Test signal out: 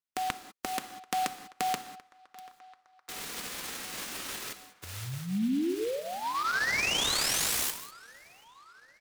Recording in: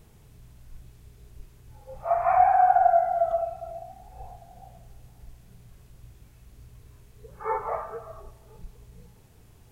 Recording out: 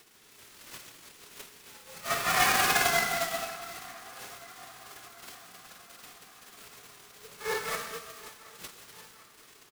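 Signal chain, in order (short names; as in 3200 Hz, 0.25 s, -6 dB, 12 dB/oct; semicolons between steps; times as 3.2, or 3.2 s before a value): spectral whitening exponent 0.3; downsampling 32000 Hz; bell 700 Hz -10.5 dB 0.79 oct; flange 0.21 Hz, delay 2.7 ms, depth 2.4 ms, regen -45%; HPF 150 Hz 24 dB/oct; narrowing echo 0.737 s, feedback 71%, band-pass 1100 Hz, level -18.5 dB; non-linear reverb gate 0.22 s flat, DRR 9.5 dB; AGC gain up to 3 dB; noise-modulated delay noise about 2800 Hz, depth 0.032 ms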